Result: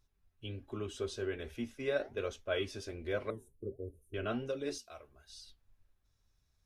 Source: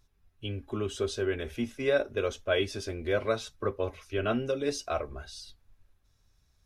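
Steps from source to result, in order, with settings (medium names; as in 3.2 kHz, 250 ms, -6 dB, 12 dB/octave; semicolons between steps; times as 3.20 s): 3.30–4.14 s: elliptic band-stop 400–9600 Hz, stop band 40 dB; 4.78–5.30 s: pre-emphasis filter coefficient 0.8; flange 1.3 Hz, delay 1.9 ms, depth 8.1 ms, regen -81%; trim -3 dB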